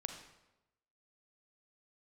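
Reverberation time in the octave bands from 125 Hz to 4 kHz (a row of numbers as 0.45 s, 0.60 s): 1.0 s, 1.0 s, 1.0 s, 0.95 s, 0.85 s, 0.75 s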